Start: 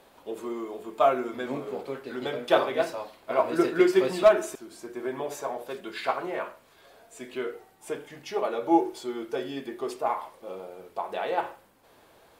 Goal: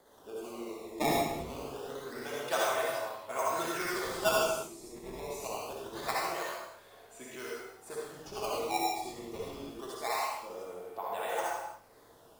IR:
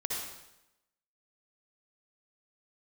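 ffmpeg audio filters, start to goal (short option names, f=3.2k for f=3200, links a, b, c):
-filter_complex "[0:a]acrossover=split=120|680|3800[a][b][c][d];[b]acompressor=threshold=-42dB:ratio=6[e];[c]acrusher=samples=16:mix=1:aa=0.000001:lfo=1:lforange=25.6:lforate=0.25[f];[a][e][f][d]amix=inputs=4:normalize=0[g];[1:a]atrim=start_sample=2205,afade=t=out:st=0.41:d=0.01,atrim=end_sample=18522[h];[g][h]afir=irnorm=-1:irlink=0,volume=-5dB"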